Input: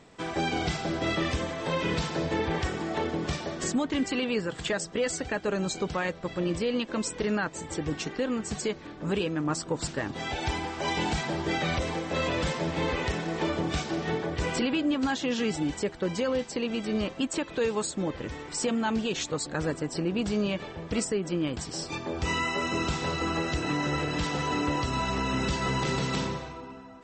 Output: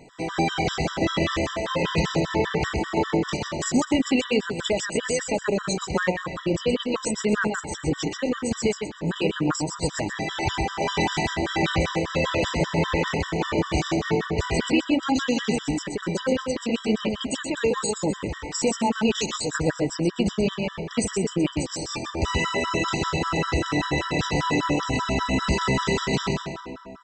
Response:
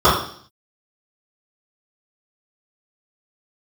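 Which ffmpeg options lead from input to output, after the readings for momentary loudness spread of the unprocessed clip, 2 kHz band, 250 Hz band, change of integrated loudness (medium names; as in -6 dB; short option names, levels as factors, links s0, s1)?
4 LU, +4.5 dB, +4.5 dB, +4.5 dB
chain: -filter_complex "[0:a]asplit=2[s0][s1];[s1]aecho=0:1:127|254|381|508:0.596|0.185|0.0572|0.0177[s2];[s0][s2]amix=inputs=2:normalize=0,afftfilt=real='re*gt(sin(2*PI*5.1*pts/sr)*(1-2*mod(floor(b*sr/1024/980),2)),0)':imag='im*gt(sin(2*PI*5.1*pts/sr)*(1-2*mod(floor(b*sr/1024/980),2)),0)':win_size=1024:overlap=0.75,volume=2.11"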